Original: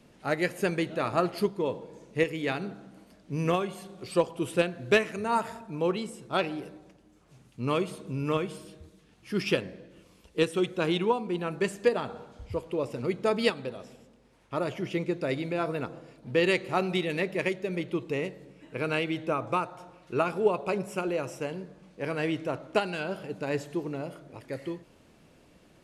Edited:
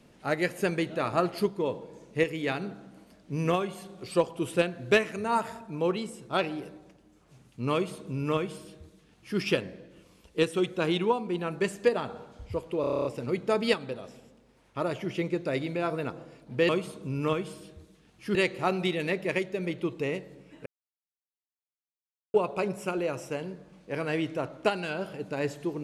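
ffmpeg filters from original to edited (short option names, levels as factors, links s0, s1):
-filter_complex "[0:a]asplit=13[s0][s1][s2][s3][s4][s5][s6][s7][s8][s9][s10][s11][s12];[s0]atrim=end=12.842[s13];[s1]atrim=start=12.808:end=12.842[s14];[s2]atrim=start=12.808:end=12.842[s15];[s3]atrim=start=12.808:end=12.842[s16];[s4]atrim=start=12.808:end=12.842[s17];[s5]atrim=start=12.808:end=12.842[s18];[s6]atrim=start=12.808:end=12.842[s19];[s7]atrim=start=12.808:end=12.842[s20];[s8]atrim=start=12.808:end=16.452[s21];[s9]atrim=start=7.728:end=9.392[s22];[s10]atrim=start=16.448:end=18.76,asetpts=PTS-STARTPTS,afade=t=out:st=2.308:d=0.004:c=hsin[s23];[s11]atrim=start=18.76:end=20.44,asetpts=PTS-STARTPTS,volume=0[s24];[s12]atrim=start=20.44,asetpts=PTS-STARTPTS,afade=t=in:d=0.004:c=hsin[s25];[s13][s14]acrossfade=d=0.004:c1=hsin:c2=hsin[s26];[s26][s15]acrossfade=d=0.004:c1=hsin:c2=hsin[s27];[s27][s16]acrossfade=d=0.004:c1=hsin:c2=hsin[s28];[s28][s17]acrossfade=d=0.004:c1=hsin:c2=hsin[s29];[s29][s18]acrossfade=d=0.004:c1=hsin:c2=hsin[s30];[s30][s19]acrossfade=d=0.004:c1=hsin:c2=hsin[s31];[s31][s20]acrossfade=d=0.004:c1=hsin:c2=hsin[s32];[s32][s21]acrossfade=d=0.004:c1=hsin:c2=hsin[s33];[s33][s22]acrossfade=d=0.004:c1=hsin:c2=hsin[s34];[s23][s24][s25]concat=n=3:v=0:a=1[s35];[s34][s35]acrossfade=d=0.004:c1=hsin:c2=hsin"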